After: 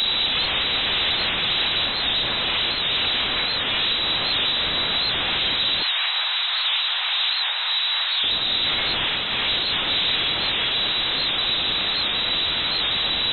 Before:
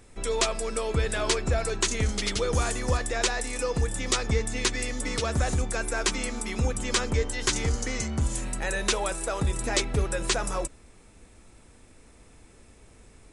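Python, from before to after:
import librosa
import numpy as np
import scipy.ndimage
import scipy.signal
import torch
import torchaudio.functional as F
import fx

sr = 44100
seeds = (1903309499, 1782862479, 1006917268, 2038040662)

y = np.sign(x) * np.sqrt(np.mean(np.square(x)))
y = fx.peak_eq(y, sr, hz=2100.0, db=-6.5, octaves=1.0)
y = fx.echo_alternate(y, sr, ms=100, hz=1900.0, feedback_pct=90, wet_db=-12.5)
y = fx.rev_schroeder(y, sr, rt60_s=0.8, comb_ms=32, drr_db=-8.0)
y = fx.fold_sine(y, sr, drive_db=4, ceiling_db=-17.5)
y = fx.freq_invert(y, sr, carrier_hz=3900)
y = fx.highpass(y, sr, hz=790.0, slope=24, at=(5.83, 8.24))
y = fx.record_warp(y, sr, rpm=78.0, depth_cents=100.0)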